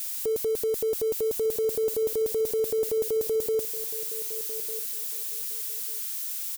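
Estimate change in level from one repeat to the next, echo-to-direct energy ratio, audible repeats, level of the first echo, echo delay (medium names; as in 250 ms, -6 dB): -14.5 dB, -14.5 dB, 2, -14.5 dB, 1199 ms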